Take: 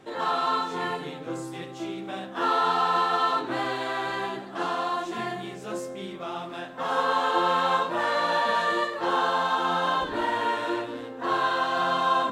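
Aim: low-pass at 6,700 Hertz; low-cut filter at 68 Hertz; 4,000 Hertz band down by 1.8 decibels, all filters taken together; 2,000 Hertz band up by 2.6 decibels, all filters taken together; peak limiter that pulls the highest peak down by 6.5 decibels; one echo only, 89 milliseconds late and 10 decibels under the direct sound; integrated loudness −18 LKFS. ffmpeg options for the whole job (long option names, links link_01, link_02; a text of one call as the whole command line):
ffmpeg -i in.wav -af "highpass=68,lowpass=6700,equalizer=frequency=2000:width_type=o:gain=4,equalizer=frequency=4000:width_type=o:gain=-3.5,alimiter=limit=-17dB:level=0:latency=1,aecho=1:1:89:0.316,volume=9dB" out.wav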